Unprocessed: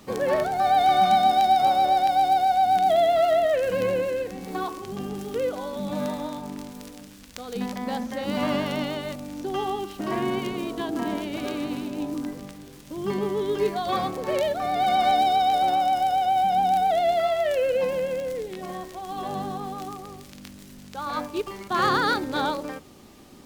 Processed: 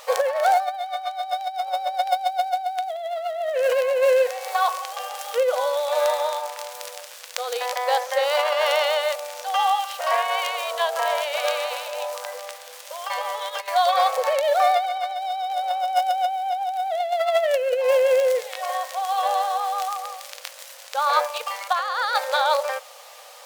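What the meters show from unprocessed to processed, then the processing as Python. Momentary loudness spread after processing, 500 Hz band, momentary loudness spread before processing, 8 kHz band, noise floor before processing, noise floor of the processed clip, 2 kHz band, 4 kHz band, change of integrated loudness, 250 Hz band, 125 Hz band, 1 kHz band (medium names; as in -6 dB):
13 LU, +3.0 dB, 16 LU, +7.5 dB, -46 dBFS, -43 dBFS, +4.5 dB, +4.5 dB, +1.0 dB, under -40 dB, under -40 dB, -0.5 dB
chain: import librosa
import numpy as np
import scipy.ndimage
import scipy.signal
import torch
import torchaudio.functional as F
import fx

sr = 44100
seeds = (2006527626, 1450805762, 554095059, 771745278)

y = fx.over_compress(x, sr, threshold_db=-26.0, ratio=-0.5)
y = fx.brickwall_highpass(y, sr, low_hz=470.0)
y = y * librosa.db_to_amplitude(7.0)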